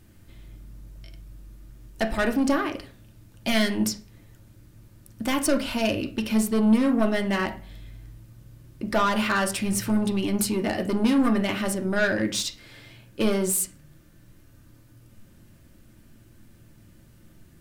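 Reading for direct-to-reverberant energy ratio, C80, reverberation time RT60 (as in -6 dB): 3.5 dB, 18.0 dB, 0.45 s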